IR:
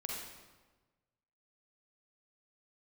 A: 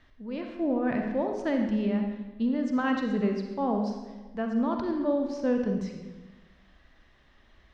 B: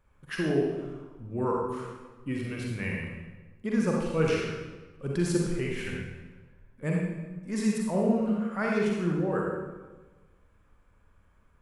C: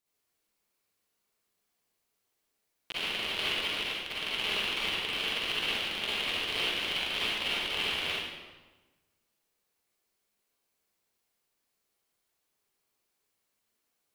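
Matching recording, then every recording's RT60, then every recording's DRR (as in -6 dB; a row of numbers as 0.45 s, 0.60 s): B; 1.3 s, 1.3 s, 1.3 s; 3.0 dB, -2.5 dB, -8.5 dB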